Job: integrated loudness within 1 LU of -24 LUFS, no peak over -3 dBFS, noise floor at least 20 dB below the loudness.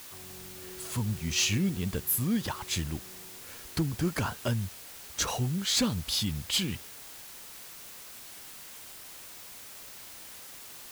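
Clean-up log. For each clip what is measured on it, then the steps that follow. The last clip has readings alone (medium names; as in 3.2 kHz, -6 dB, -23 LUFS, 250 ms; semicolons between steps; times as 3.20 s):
clipped samples 0.1%; clipping level -20.5 dBFS; noise floor -47 dBFS; noise floor target -51 dBFS; loudness -30.5 LUFS; peak level -20.5 dBFS; loudness target -24.0 LUFS
-> clip repair -20.5 dBFS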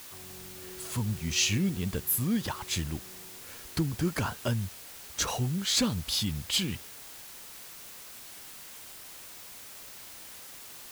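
clipped samples 0.0%; noise floor -47 dBFS; noise floor target -50 dBFS
-> noise print and reduce 6 dB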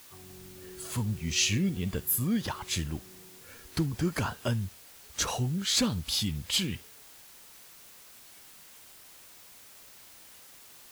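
noise floor -53 dBFS; loudness -30.0 LUFS; peak level -13.5 dBFS; loudness target -24.0 LUFS
-> trim +6 dB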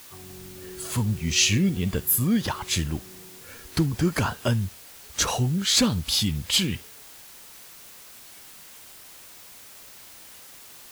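loudness -24.0 LUFS; peak level -7.5 dBFS; noise floor -47 dBFS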